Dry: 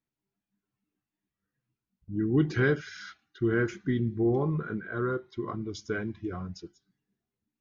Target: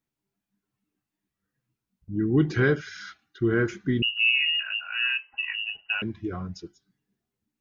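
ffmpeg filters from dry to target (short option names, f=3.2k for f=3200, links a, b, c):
-filter_complex "[0:a]asettb=1/sr,asplit=3[a][b][c];[a]atrim=end=4.024[d];[b]atrim=start=4.02:end=6.02,asetpts=PTS-STARTPTS,afade=t=in:d=0.004:c=qsin,afade=t=out:st=1.996:d=0.004:c=qsin,lowpass=f=2.6k:t=q:w=0.5098,lowpass=f=2.6k:t=q:w=0.6013,lowpass=f=2.6k:t=q:w=0.9,lowpass=f=2.6k:t=q:w=2.563,afreqshift=-3000[e];[c]atrim=start=6.016[f];[d][e]acrossfade=d=0.004:c1=hsin:c2=qsin[g];[g][f]acrossfade=d=0.004:c1=qsin:c2=hsin,volume=3dB"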